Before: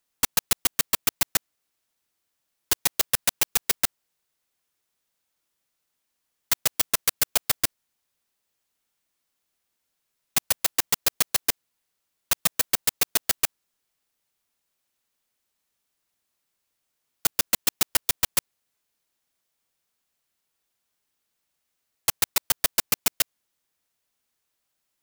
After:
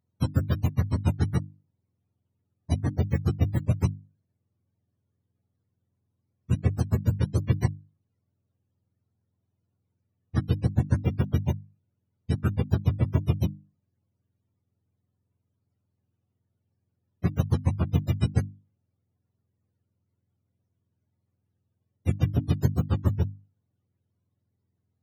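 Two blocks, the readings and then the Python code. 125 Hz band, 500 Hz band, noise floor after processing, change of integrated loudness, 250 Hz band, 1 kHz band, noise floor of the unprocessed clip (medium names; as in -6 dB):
+23.0 dB, +2.5 dB, -80 dBFS, -3.5 dB, +13.5 dB, -6.5 dB, -79 dBFS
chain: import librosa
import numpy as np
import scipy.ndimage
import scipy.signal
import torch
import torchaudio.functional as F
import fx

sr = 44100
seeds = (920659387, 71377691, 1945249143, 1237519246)

y = fx.octave_mirror(x, sr, pivot_hz=500.0)
y = fx.hum_notches(y, sr, base_hz=50, count=6)
y = F.gain(torch.from_numpy(y), 6.0).numpy()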